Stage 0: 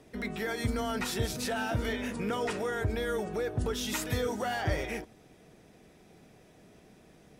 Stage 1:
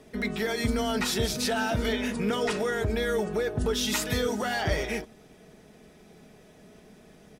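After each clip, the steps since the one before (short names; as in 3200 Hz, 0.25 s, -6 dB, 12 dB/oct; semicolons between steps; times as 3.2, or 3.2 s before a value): comb 4.7 ms, depth 38%; dynamic EQ 4500 Hz, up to +4 dB, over -48 dBFS, Q 1.1; gain +3.5 dB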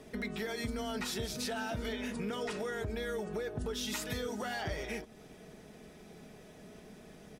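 compressor 2.5:1, threshold -39 dBFS, peak gain reduction 12 dB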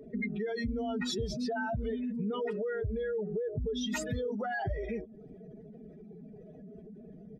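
spectral contrast raised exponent 2.5; gain +4 dB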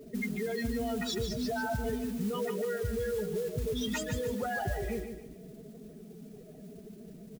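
modulation noise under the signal 18 dB; on a send: feedback echo 0.148 s, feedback 38%, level -8 dB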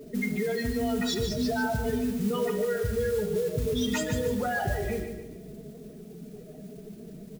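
reverb RT60 0.85 s, pre-delay 7 ms, DRR 8.5 dB; gain +4 dB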